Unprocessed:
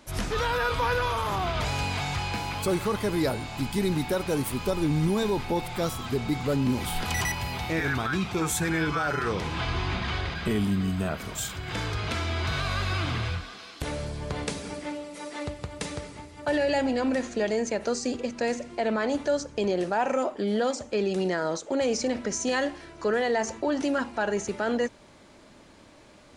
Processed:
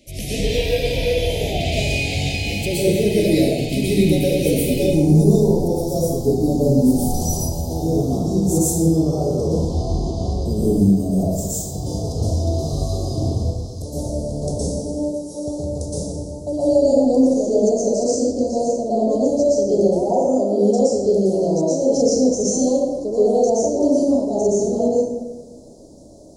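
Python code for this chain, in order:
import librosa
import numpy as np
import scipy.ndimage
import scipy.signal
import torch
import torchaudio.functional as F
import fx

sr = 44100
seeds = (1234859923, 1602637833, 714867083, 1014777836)

y = fx.ellip_bandstop(x, sr, low_hz=620.0, high_hz=fx.steps((0.0, 2300.0), (4.77, 5500.0)), order=3, stop_db=80)
y = fx.rev_plate(y, sr, seeds[0], rt60_s=1.2, hf_ratio=0.55, predelay_ms=105, drr_db=-9.5)
y = F.gain(torch.from_numpy(y), 1.5).numpy()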